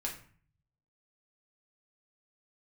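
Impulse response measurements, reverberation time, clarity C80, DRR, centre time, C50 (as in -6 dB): 0.45 s, 12.5 dB, -2.0 dB, 22 ms, 8.0 dB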